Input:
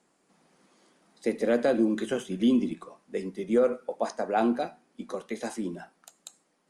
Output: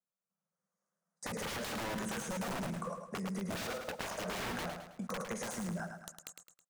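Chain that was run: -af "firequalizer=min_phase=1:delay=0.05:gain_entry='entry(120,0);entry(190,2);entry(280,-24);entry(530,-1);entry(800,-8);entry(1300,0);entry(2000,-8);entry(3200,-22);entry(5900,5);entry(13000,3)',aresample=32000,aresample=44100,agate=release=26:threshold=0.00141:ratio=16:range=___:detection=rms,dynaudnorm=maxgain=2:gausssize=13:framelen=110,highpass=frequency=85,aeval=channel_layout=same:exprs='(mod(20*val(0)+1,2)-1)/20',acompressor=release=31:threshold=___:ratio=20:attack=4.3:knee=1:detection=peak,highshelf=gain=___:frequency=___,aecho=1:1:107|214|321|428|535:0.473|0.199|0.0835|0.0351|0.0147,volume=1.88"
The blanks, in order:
0.0251, 0.00794, -8.5, 4400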